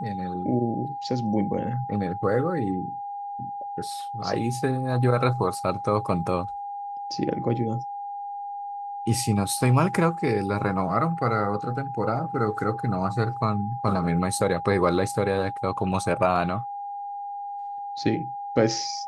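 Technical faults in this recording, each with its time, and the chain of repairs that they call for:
tone 810 Hz -31 dBFS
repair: notch 810 Hz, Q 30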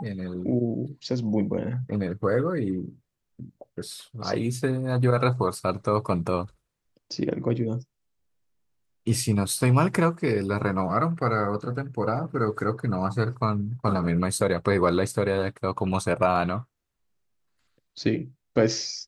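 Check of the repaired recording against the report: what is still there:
none

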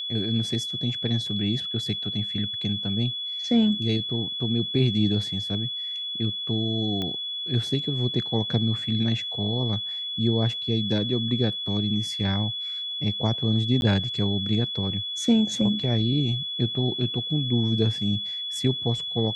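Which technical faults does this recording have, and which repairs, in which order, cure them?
tone 3400 Hz -29 dBFS
7.02 pop -17 dBFS
13.81–13.82 gap 11 ms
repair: de-click; notch 3400 Hz, Q 30; interpolate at 13.81, 11 ms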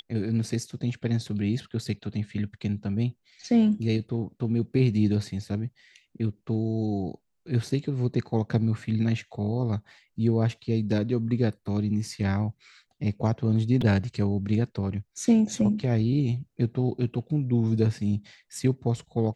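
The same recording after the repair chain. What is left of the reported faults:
none

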